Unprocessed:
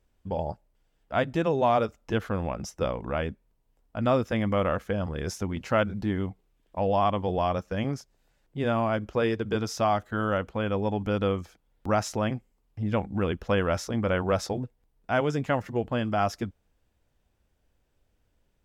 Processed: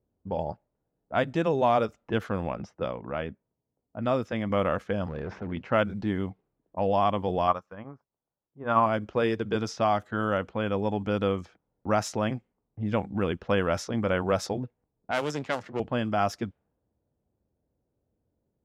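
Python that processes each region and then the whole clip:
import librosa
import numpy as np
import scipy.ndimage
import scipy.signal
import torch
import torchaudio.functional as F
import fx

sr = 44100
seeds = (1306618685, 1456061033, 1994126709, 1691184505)

y = fx.chain(x, sr, fx.highpass(hz=56.0, slope=12),
    fx.comb_fb(f0_hz=640.0, decay_s=0.16, harmonics='all', damping=0.0, mix_pct=30), at=(2.73, 4.5))
y = fx.chain(y, sr, fx.lowpass(hz=2300.0, slope=12),
    fx.clip_hard(threshold_db=-30.5),
    fx.env_flatten(amount_pct=70), at=(5.08, 5.52))
y = fx.chain(y, sr, fx.peak_eq(hz=1100.0, db=13.0, octaves=0.96),
    fx.upward_expand(threshold_db=-29.0, expansion=2.5), at=(7.47, 8.86))
y = fx.chain(y, sr, fx.halfwave_gain(db=-12.0),
    fx.bass_treble(bass_db=-5, treble_db=10),
    fx.band_squash(depth_pct=40), at=(15.11, 15.8))
y = fx.env_lowpass(y, sr, base_hz=570.0, full_db=-23.0)
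y = scipy.signal.sosfilt(scipy.signal.butter(2, 98.0, 'highpass', fs=sr, output='sos'), y)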